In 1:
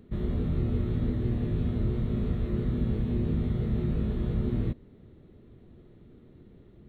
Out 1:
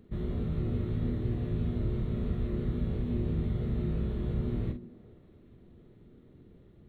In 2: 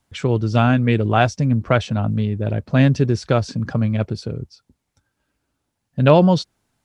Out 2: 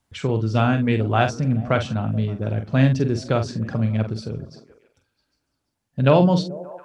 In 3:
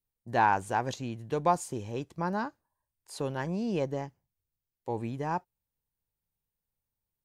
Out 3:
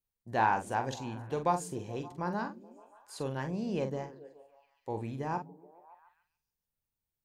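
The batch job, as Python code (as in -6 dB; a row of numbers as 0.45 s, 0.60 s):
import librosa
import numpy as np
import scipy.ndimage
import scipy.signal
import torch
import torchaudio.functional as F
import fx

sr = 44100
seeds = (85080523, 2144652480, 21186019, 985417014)

y = fx.doubler(x, sr, ms=45.0, db=-8.0)
y = fx.echo_stepped(y, sr, ms=143, hz=190.0, octaves=0.7, feedback_pct=70, wet_db=-11.5)
y = y * 10.0 ** (-3.5 / 20.0)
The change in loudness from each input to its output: -3.0 LU, -2.5 LU, -3.0 LU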